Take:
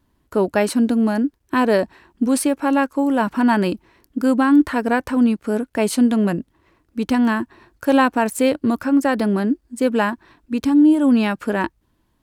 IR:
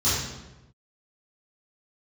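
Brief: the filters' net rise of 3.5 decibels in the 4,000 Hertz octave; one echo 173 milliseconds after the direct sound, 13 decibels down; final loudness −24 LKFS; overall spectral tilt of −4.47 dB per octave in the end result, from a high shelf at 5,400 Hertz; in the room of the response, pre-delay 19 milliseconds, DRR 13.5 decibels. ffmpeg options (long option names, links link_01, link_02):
-filter_complex "[0:a]equalizer=frequency=4000:width_type=o:gain=7,highshelf=frequency=5400:gain=-6,aecho=1:1:173:0.224,asplit=2[link_01][link_02];[1:a]atrim=start_sample=2205,adelay=19[link_03];[link_02][link_03]afir=irnorm=-1:irlink=0,volume=-27.5dB[link_04];[link_01][link_04]amix=inputs=2:normalize=0,volume=-6dB"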